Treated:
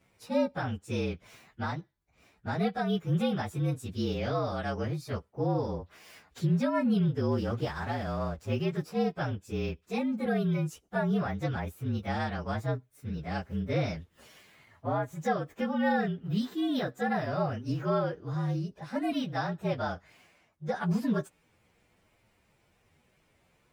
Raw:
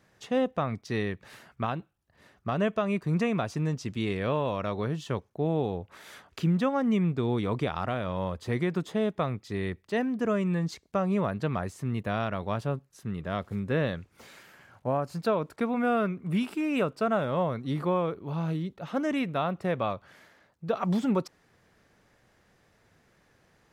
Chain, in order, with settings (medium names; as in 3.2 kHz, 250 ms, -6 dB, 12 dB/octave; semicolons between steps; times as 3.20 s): frequency axis rescaled in octaves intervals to 114%; 7.32–8.48 s: hysteresis with a dead band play -49 dBFS